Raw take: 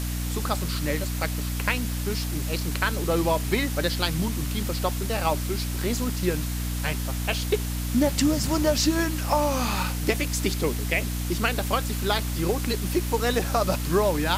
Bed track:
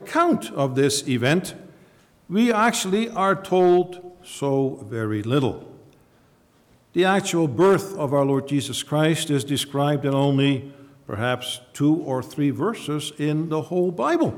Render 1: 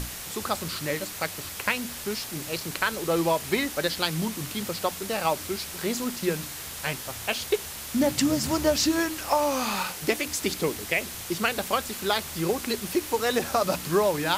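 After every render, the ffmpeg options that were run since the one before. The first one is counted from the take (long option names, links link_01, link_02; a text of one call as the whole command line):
ffmpeg -i in.wav -af "bandreject=frequency=60:width_type=h:width=6,bandreject=frequency=120:width_type=h:width=6,bandreject=frequency=180:width_type=h:width=6,bandreject=frequency=240:width_type=h:width=6,bandreject=frequency=300:width_type=h:width=6" out.wav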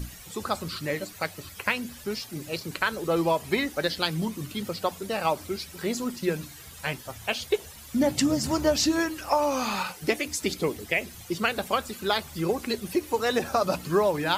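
ffmpeg -i in.wav -af "afftdn=noise_reduction=13:noise_floor=-38" out.wav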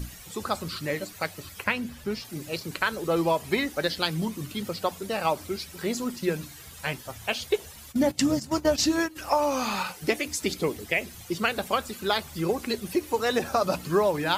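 ffmpeg -i in.wav -filter_complex "[0:a]asettb=1/sr,asplit=3[link_01][link_02][link_03];[link_01]atrim=end=1.644[link_04];[link_02]atrim=start=1.64:end=2.25,asetpts=PTS-STARTPTS,afade=type=in:duration=0.004:curve=qsin,afade=type=out:start_time=0.606:duration=0.004:curve=qsin,bass=frequency=250:gain=4,treble=frequency=4000:gain=-6[link_05];[link_03]atrim=start=2.246[link_06];[link_04][link_05]acrossfade=duration=0.004:curve1=hsin:curve2=qsin[link_07];[link_07][link_06]acrossfade=duration=0.004:curve1=qsin:curve2=hsin,asplit=3[link_08][link_09][link_10];[link_08]afade=type=out:start_time=7.91:duration=0.02[link_11];[link_09]agate=range=-14dB:threshold=-28dB:ratio=16:release=100:detection=peak,afade=type=in:start_time=7.91:duration=0.02,afade=type=out:start_time=9.15:duration=0.02[link_12];[link_10]afade=type=in:start_time=9.15:duration=0.02[link_13];[link_11][link_12][link_13]amix=inputs=3:normalize=0" out.wav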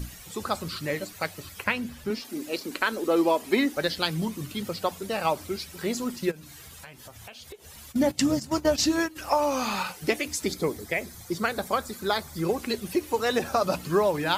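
ffmpeg -i in.wav -filter_complex "[0:a]asettb=1/sr,asplit=3[link_01][link_02][link_03];[link_01]atrim=end=2.104[link_04];[link_02]atrim=start=2.1:end=3.77,asetpts=PTS-STARTPTS,afade=type=in:duration=0.004:curve=qsin,afade=type=out:start_time=1.666:duration=0.004:curve=qsin,lowshelf=frequency=190:width_type=q:width=3:gain=-9.5[link_05];[link_03]atrim=start=3.766[link_06];[link_04][link_05]acrossfade=duration=0.004:curve1=hsin:curve2=qsin[link_07];[link_07][link_06]acrossfade=duration=0.004:curve1=qsin:curve2=hsin,asplit=3[link_08][link_09][link_10];[link_08]afade=type=out:start_time=6.3:duration=0.02[link_11];[link_09]acompressor=threshold=-41dB:ratio=8:attack=3.2:release=140:knee=1:detection=peak,afade=type=in:start_time=6.3:duration=0.02,afade=type=out:start_time=7.77:duration=0.02[link_12];[link_10]afade=type=in:start_time=7.77:duration=0.02[link_13];[link_11][link_12][link_13]amix=inputs=3:normalize=0,asettb=1/sr,asplit=3[link_14][link_15][link_16];[link_14]atrim=end=10.444[link_17];[link_15]atrim=start=10.44:end=12.45,asetpts=PTS-STARTPTS,afade=type=in:duration=0.004:curve=qsin,afade=type=out:start_time=2.006:duration=0.004:curve=qsin,equalizer=frequency=2800:width_type=o:width=0.32:gain=-13[link_18];[link_16]atrim=start=12.446[link_19];[link_17][link_18]acrossfade=duration=0.004:curve1=hsin:curve2=qsin[link_20];[link_20][link_19]acrossfade=duration=0.004:curve1=qsin:curve2=hsin" out.wav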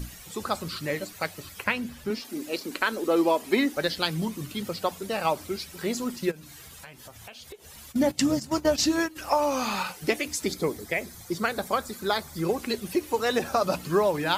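ffmpeg -i in.wav -af "equalizer=frequency=87:width=1.9:gain=-3" out.wav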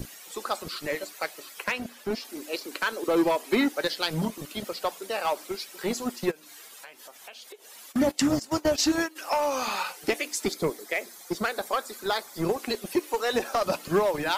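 ffmpeg -i in.wav -filter_complex "[0:a]acrossover=split=300|4100[link_01][link_02][link_03];[link_01]acrusher=bits=4:mix=0:aa=0.5[link_04];[link_02]asoftclip=type=hard:threshold=-19.5dB[link_05];[link_04][link_05][link_03]amix=inputs=3:normalize=0" out.wav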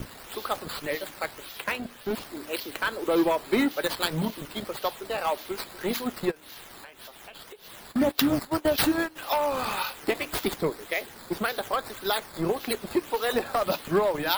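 ffmpeg -i in.wav -filter_complex "[0:a]acrossover=split=3500[link_01][link_02];[link_02]acrusher=samples=10:mix=1:aa=0.000001:lfo=1:lforange=10:lforate=1.8[link_03];[link_01][link_03]amix=inputs=2:normalize=0,aexciter=amount=2:drive=4.5:freq=3300" out.wav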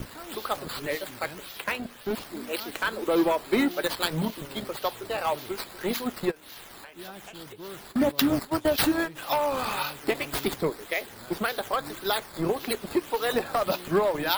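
ffmpeg -i in.wav -i bed.wav -filter_complex "[1:a]volume=-25.5dB[link_01];[0:a][link_01]amix=inputs=2:normalize=0" out.wav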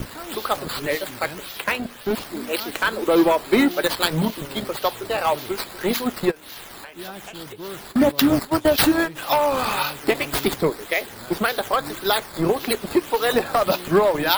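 ffmpeg -i in.wav -af "volume=6.5dB,alimiter=limit=-2dB:level=0:latency=1" out.wav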